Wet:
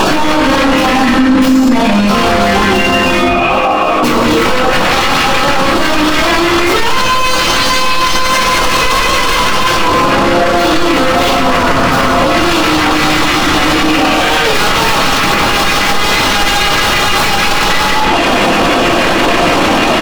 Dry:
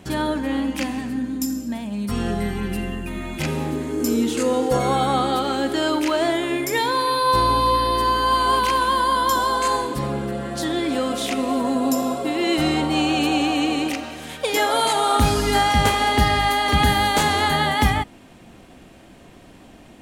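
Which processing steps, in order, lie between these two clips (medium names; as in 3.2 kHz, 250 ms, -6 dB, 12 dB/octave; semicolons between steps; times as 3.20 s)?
tracing distortion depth 0.35 ms; tone controls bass -14 dB, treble -9 dB; in parallel at -5 dB: sine folder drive 19 dB, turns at -7 dBFS; on the sum: compression, threshold -30 dBFS, peak gain reduction 17 dB; overdrive pedal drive 34 dB, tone 1.1 kHz, clips at -18 dBFS; 3.21–4.03 s: vowel filter a; on a send: delay 783 ms -22.5 dB; on the sum: LFO notch square 6.3 Hz 760–2000 Hz; tilt shelf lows -5 dB, about 1.2 kHz; simulated room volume 640 m³, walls furnished, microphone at 9 m; loudness maximiser +24.5 dB; trim -1 dB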